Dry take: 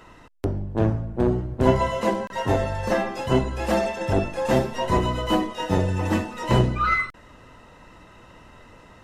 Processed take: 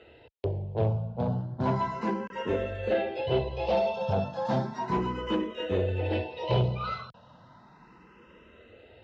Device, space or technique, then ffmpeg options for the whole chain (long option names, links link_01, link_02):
barber-pole phaser into a guitar amplifier: -filter_complex "[0:a]asplit=2[link_01][link_02];[link_02]afreqshift=0.34[link_03];[link_01][link_03]amix=inputs=2:normalize=1,asoftclip=type=tanh:threshold=-17.5dB,highpass=91,equalizer=frequency=280:width_type=q:width=4:gain=-8,equalizer=frequency=460:width_type=q:width=4:gain=4,equalizer=frequency=1200:width_type=q:width=4:gain=-7,equalizer=frequency=1900:width_type=q:width=4:gain=-8,lowpass=frequency=4300:width=0.5412,lowpass=frequency=4300:width=1.3066"